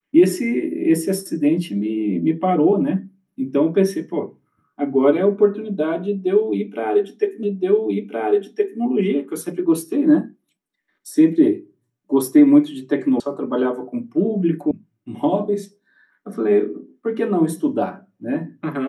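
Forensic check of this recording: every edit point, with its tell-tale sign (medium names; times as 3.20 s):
7.43 s: repeat of the last 1.37 s
13.20 s: sound stops dead
14.71 s: sound stops dead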